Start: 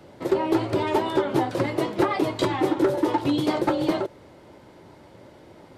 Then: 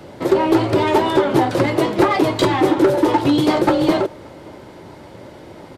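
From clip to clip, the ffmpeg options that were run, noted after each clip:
ffmpeg -i in.wav -filter_complex "[0:a]asplit=2[link_01][link_02];[link_02]asoftclip=type=hard:threshold=-28dB,volume=-4dB[link_03];[link_01][link_03]amix=inputs=2:normalize=0,asplit=2[link_04][link_05];[link_05]adelay=577.3,volume=-27dB,highshelf=frequency=4000:gain=-13[link_06];[link_04][link_06]amix=inputs=2:normalize=0,volume=5.5dB" out.wav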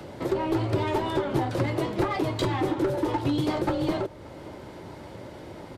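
ffmpeg -i in.wav -filter_complex "[0:a]acrossover=split=120[link_01][link_02];[link_02]acompressor=threshold=-45dB:ratio=1.5[link_03];[link_01][link_03]amix=inputs=2:normalize=0" out.wav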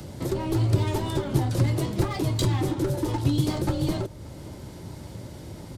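ffmpeg -i in.wav -af "bass=frequency=250:gain=13,treble=frequency=4000:gain=15,volume=-5dB" out.wav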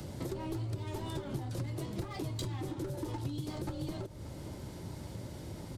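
ffmpeg -i in.wav -af "acompressor=threshold=-31dB:ratio=6,volume=-4dB" out.wav

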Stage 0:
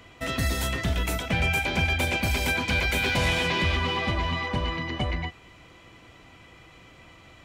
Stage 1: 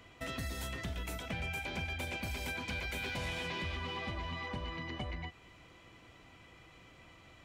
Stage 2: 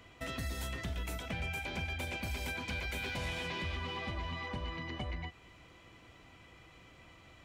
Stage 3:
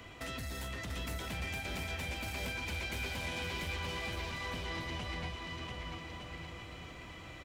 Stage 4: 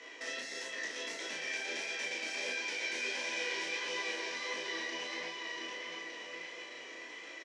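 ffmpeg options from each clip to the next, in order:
ffmpeg -i in.wav -af "acompressor=threshold=-32dB:ratio=2.5,volume=-7dB" out.wav
ffmpeg -i in.wav -af "equalizer=frequency=63:width_type=o:width=0.77:gain=2.5" out.wav
ffmpeg -i in.wav -filter_complex "[0:a]acrossover=split=82|3300[link_01][link_02][link_03];[link_01]acompressor=threshold=-52dB:ratio=4[link_04];[link_02]acompressor=threshold=-45dB:ratio=4[link_05];[link_03]acompressor=threshold=-53dB:ratio=4[link_06];[link_04][link_05][link_06]amix=inputs=3:normalize=0,aeval=exprs='0.0251*sin(PI/2*2.24*val(0)/0.0251)':channel_layout=same,asplit=2[link_07][link_08];[link_08]aecho=0:1:690|1208|1596|1887|2105:0.631|0.398|0.251|0.158|0.1[link_09];[link_07][link_09]amix=inputs=2:normalize=0,volume=-4.5dB" out.wav
ffmpeg -i in.wav -filter_complex "[0:a]flanger=delay=17:depth=7.3:speed=1.5,highpass=frequency=340:width=0.5412,highpass=frequency=340:width=1.3066,equalizer=frequency=460:width_type=q:width=4:gain=3,equalizer=frequency=740:width_type=q:width=4:gain=-7,equalizer=frequency=1300:width_type=q:width=4:gain=-9,equalizer=frequency=1800:width_type=q:width=4:gain=8,equalizer=frequency=5700:width_type=q:width=4:gain=9,lowpass=frequency=7700:width=0.5412,lowpass=frequency=7700:width=1.3066,asplit=2[link_01][link_02];[link_02]adelay=36,volume=-3dB[link_03];[link_01][link_03]amix=inputs=2:normalize=0,volume=3dB" out.wav

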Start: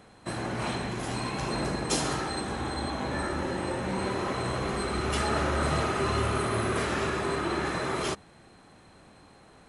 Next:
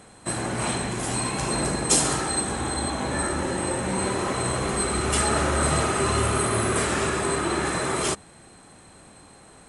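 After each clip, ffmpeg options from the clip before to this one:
ffmpeg -i in.wav -af "equalizer=frequency=8500:width_type=o:width=0.53:gain=14,volume=4dB" out.wav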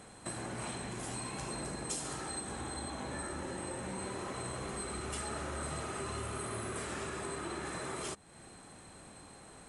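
ffmpeg -i in.wav -af "acompressor=threshold=-37dB:ratio=3,volume=-4dB" out.wav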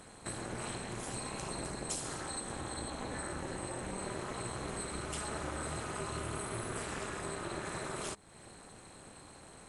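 ffmpeg -i in.wav -af "tremolo=f=230:d=0.947,volume=4dB" out.wav

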